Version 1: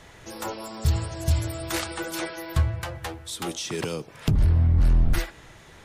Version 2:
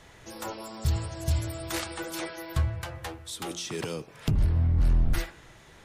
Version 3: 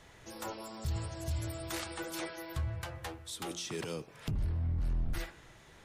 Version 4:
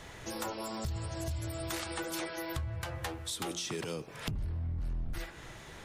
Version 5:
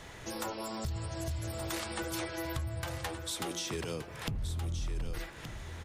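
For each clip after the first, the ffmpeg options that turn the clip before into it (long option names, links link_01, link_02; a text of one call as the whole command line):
ffmpeg -i in.wav -af "bandreject=frequency=87.33:width_type=h:width=4,bandreject=frequency=174.66:width_type=h:width=4,bandreject=frequency=261.99:width_type=h:width=4,bandreject=frequency=349.32:width_type=h:width=4,bandreject=frequency=436.65:width_type=h:width=4,bandreject=frequency=523.98:width_type=h:width=4,bandreject=frequency=611.31:width_type=h:width=4,bandreject=frequency=698.64:width_type=h:width=4,bandreject=frequency=785.97:width_type=h:width=4,bandreject=frequency=873.3:width_type=h:width=4,bandreject=frequency=960.63:width_type=h:width=4,bandreject=frequency=1047.96:width_type=h:width=4,bandreject=frequency=1135.29:width_type=h:width=4,bandreject=frequency=1222.62:width_type=h:width=4,bandreject=frequency=1309.95:width_type=h:width=4,bandreject=frequency=1397.28:width_type=h:width=4,bandreject=frequency=1484.61:width_type=h:width=4,bandreject=frequency=1571.94:width_type=h:width=4,bandreject=frequency=1659.27:width_type=h:width=4,bandreject=frequency=1746.6:width_type=h:width=4,bandreject=frequency=1833.93:width_type=h:width=4,bandreject=frequency=1921.26:width_type=h:width=4,bandreject=frequency=2008.59:width_type=h:width=4,bandreject=frequency=2095.92:width_type=h:width=4,bandreject=frequency=2183.25:width_type=h:width=4,bandreject=frequency=2270.58:width_type=h:width=4,bandreject=frequency=2357.91:width_type=h:width=4,bandreject=frequency=2445.24:width_type=h:width=4,bandreject=frequency=2532.57:width_type=h:width=4,bandreject=frequency=2619.9:width_type=h:width=4,bandreject=frequency=2707.23:width_type=h:width=4,bandreject=frequency=2794.56:width_type=h:width=4,volume=-3.5dB" out.wav
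ffmpeg -i in.wav -af "alimiter=limit=-23dB:level=0:latency=1:release=52,volume=-4.5dB" out.wav
ffmpeg -i in.wav -af "acompressor=threshold=-43dB:ratio=5,volume=8.5dB" out.wav
ffmpeg -i in.wav -af "aecho=1:1:1173:0.335" out.wav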